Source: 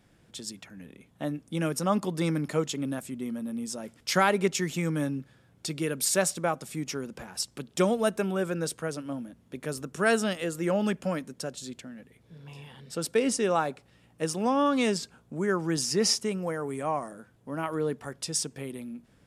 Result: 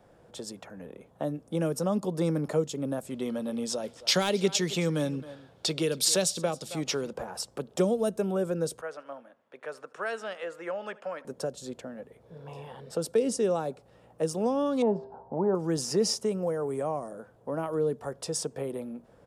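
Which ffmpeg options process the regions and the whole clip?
-filter_complex "[0:a]asettb=1/sr,asplit=3[s0][s1][s2];[s0]atrim=end=3.104[s3];[s1]atrim=start=3.1:end=7.13,asetpts=PTS-STARTPTS,afade=t=in:d=0.004:c=qsin,afade=t=out:st=4.026:d=0.004:c=qsin,equalizer=f=3700:t=o:w=1.6:g=14,aecho=1:1:268:0.0891,atrim=end_sample=177723,asoftclip=type=hard:threshold=0.447[s4];[s2]atrim=start=7.126[s5];[s3][s4]acrossfade=d=0.004:c1=hsin:c2=qsin[s6];[s6][s5]acrossfade=d=0.004:c1=qsin:c2=hsin,asettb=1/sr,asplit=3[s7][s8][s9];[s7]atrim=end=8.814[s10];[s8]atrim=start=8.81:end=11.25,asetpts=PTS-STARTPTS,afade=t=in:d=0.004:c=qsin,afade=t=out:st=2.436:d=0.004:c=qsin,bandpass=f=2000:t=q:w=1.2,aecho=1:1:75|150|225:0.0708|0.0361|0.0184,atrim=end_sample=107604[s11];[s9]atrim=start=11.246[s12];[s10][s11]acrossfade=d=0.004:c1=hsin:c2=qsin[s13];[s13][s12]acrossfade=d=0.004:c1=qsin:c2=hsin,asettb=1/sr,asplit=3[s14][s15][s16];[s14]atrim=end=14.824[s17];[s15]atrim=start=14.82:end=15.55,asetpts=PTS-STARTPTS,afade=t=in:d=0.004:c=qsin,afade=t=out:st=0.726:d=0.004:c=qsin,lowpass=f=860:t=q:w=7.5,bandreject=f=132.2:t=h:w=4,bandreject=f=264.4:t=h:w=4,bandreject=f=396.6:t=h:w=4,bandreject=f=528.8:t=h:w=4,bandreject=f=661:t=h:w=4,bandreject=f=793.2:t=h:w=4,bandreject=f=925.4:t=h:w=4,bandreject=f=1057.6:t=h:w=4,bandreject=f=1189.8:t=h:w=4,bandreject=f=1322:t=h:w=4,bandreject=f=1454.2:t=h:w=4,bandreject=f=1586.4:t=h:w=4,bandreject=f=1718.6:t=h:w=4,bandreject=f=1850.8:t=h:w=4,bandreject=f=1983:t=h:w=4,bandreject=f=2115.2:t=h:w=4,bandreject=f=2247.4:t=h:w=4,bandreject=f=2379.6:t=h:w=4,bandreject=f=2511.8:t=h:w=4,bandreject=f=2644:t=h:w=4,bandreject=f=2776.2:t=h:w=4,bandreject=f=2908.4:t=h:w=4,bandreject=f=3040.6:t=h:w=4,bandreject=f=3172.8:t=h:w=4,bandreject=f=3305:t=h:w=4,bandreject=f=3437.2:t=h:w=4,bandreject=f=3569.4:t=h:w=4,bandreject=f=3701.6:t=h:w=4,bandreject=f=3833.8:t=h:w=4,bandreject=f=3966:t=h:w=4,bandreject=f=4098.2:t=h:w=4,bandreject=f=4230.4:t=h:w=4,bandreject=f=4362.6:t=h:w=4,bandreject=f=4494.8:t=h:w=4,bandreject=f=4627:t=h:w=4,bandreject=f=4759.2:t=h:w=4,bandreject=f=4891.4:t=h:w=4,bandreject=f=5023.6:t=h:w=4,bandreject=f=5155.8:t=h:w=4,bandreject=f=5288:t=h:w=4[s18];[s16]atrim=start=15.546[s19];[s17][s18]acrossfade=d=0.004:c1=hsin:c2=qsin[s20];[s20][s19]acrossfade=d=0.004:c1=qsin:c2=hsin,firequalizer=gain_entry='entry(280,0);entry(490,13);entry(2100,-4)':delay=0.05:min_phase=1,acrossover=split=320|3000[s21][s22][s23];[s22]acompressor=threshold=0.0224:ratio=5[s24];[s21][s24][s23]amix=inputs=3:normalize=0"

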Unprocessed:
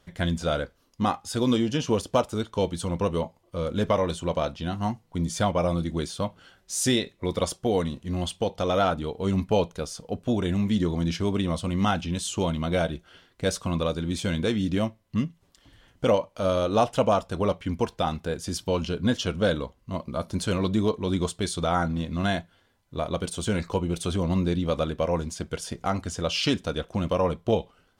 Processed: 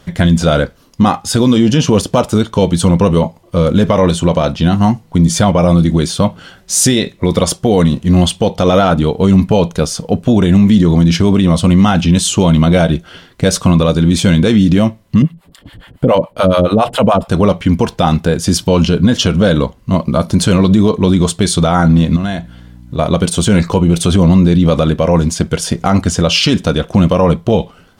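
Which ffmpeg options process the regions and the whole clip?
-filter_complex "[0:a]asettb=1/sr,asplit=3[s0][s1][s2];[s0]atrim=end=15.224[s3];[s1]atrim=start=15.22:end=17.28,asetpts=PTS-STARTPTS,afade=t=in:d=0.004:c=qsin,afade=t=out:st=2.056:d=0.004:c=qsin,acrossover=split=590[s4][s5];[s4]aeval=exprs='val(0)*(1-1/2+1/2*cos(2*PI*7.1*n/s))':c=same[s6];[s5]aeval=exprs='val(0)*(1-1/2-1/2*cos(2*PI*7.1*n/s))':c=same[s7];[s6][s7]amix=inputs=2:normalize=0,acontrast=27,equalizer=f=6000:t=o:w=0.47:g=-14.5[s8];[s2]atrim=start=17.276[s9];[s3][s8]acrossfade=d=0.004:c1=hsin:c2=qsin[s10];[s10][s9]acrossfade=d=0.004:c1=qsin:c2=hsin,asettb=1/sr,asplit=3[s11][s12][s13];[s11]atrim=end=22.164[s14];[s12]atrim=start=22.16:end=22.99,asetpts=PTS-STARTPTS,afade=t=in:d=0.004:c=qsin,afade=t=out:st=0.826:d=0.004:c=qsin,acompressor=threshold=0.0126:ratio=3:attack=3.2:release=140:knee=1:detection=peak,aeval=exprs='val(0)+0.00224*(sin(2*PI*60*n/s)+sin(2*PI*2*60*n/s)/2+sin(2*PI*3*60*n/s)/3+sin(2*PI*4*60*n/s)/4+sin(2*PI*5*60*n/s)/5)':c=same[s15];[s13]atrim=start=22.986[s16];[s14][s15]acrossfade=d=0.004:c1=hsin:c2=qsin[s17];[s17][s16]acrossfade=d=0.004:c1=qsin:c2=hsin,equalizer=f=170:w=1.3:g=6,alimiter=level_in=7.5:limit=0.891:release=50:level=0:latency=1,volume=0.891"

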